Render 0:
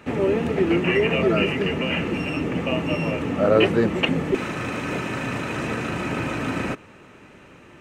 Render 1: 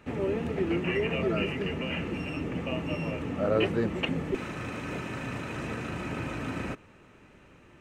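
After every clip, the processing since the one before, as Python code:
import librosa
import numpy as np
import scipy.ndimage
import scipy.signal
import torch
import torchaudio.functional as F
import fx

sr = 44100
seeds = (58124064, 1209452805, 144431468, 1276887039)

y = fx.low_shelf(x, sr, hz=71.0, db=11.5)
y = y * librosa.db_to_amplitude(-9.0)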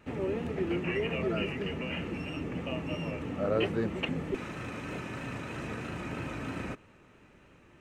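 y = fx.vibrato(x, sr, rate_hz=3.1, depth_cents=36.0)
y = y * librosa.db_to_amplitude(-3.0)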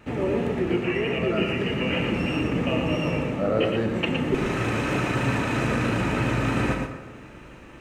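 y = fx.rider(x, sr, range_db=10, speed_s=0.5)
y = y + 10.0 ** (-5.0 / 20.0) * np.pad(y, (int(115 * sr / 1000.0), 0))[:len(y)]
y = fx.rev_plate(y, sr, seeds[0], rt60_s=1.3, hf_ratio=0.6, predelay_ms=0, drr_db=6.0)
y = y * librosa.db_to_amplitude(7.5)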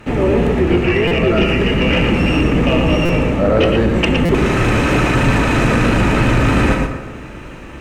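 y = fx.octave_divider(x, sr, octaves=2, level_db=-3.0)
y = fx.fold_sine(y, sr, drive_db=4, ceiling_db=-9.5)
y = fx.buffer_glitch(y, sr, at_s=(1.07, 3.05, 4.25), block=256, repeats=6)
y = y * librosa.db_to_amplitude(3.0)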